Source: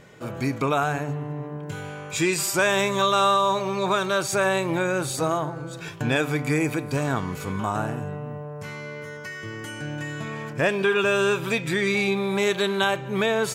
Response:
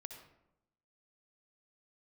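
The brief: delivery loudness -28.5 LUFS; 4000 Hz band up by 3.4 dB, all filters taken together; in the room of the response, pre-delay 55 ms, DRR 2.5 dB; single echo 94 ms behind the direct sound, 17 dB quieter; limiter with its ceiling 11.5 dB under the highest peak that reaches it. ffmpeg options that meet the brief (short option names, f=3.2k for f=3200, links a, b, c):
-filter_complex "[0:a]equalizer=f=4k:t=o:g=4,alimiter=limit=-20dB:level=0:latency=1,aecho=1:1:94:0.141,asplit=2[a][b];[1:a]atrim=start_sample=2205,adelay=55[c];[b][c]afir=irnorm=-1:irlink=0,volume=2dB[d];[a][d]amix=inputs=2:normalize=0,volume=-1dB"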